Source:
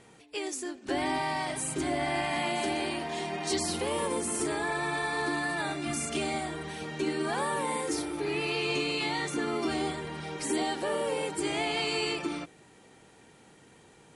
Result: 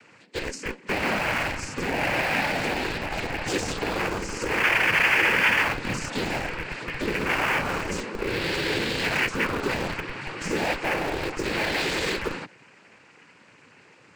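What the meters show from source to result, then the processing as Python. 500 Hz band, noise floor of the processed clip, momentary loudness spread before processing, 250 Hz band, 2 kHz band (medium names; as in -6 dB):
+2.5 dB, -55 dBFS, 6 LU, +1.5 dB, +10.5 dB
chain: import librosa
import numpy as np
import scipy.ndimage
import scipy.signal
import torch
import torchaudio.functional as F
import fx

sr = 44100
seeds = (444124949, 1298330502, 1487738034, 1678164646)

p1 = fx.peak_eq(x, sr, hz=1700.0, db=13.5, octaves=0.72)
p2 = fx.noise_vocoder(p1, sr, seeds[0], bands=8)
p3 = fx.schmitt(p2, sr, flips_db=-25.0)
y = p2 + (p3 * librosa.db_to_amplitude(-6.0))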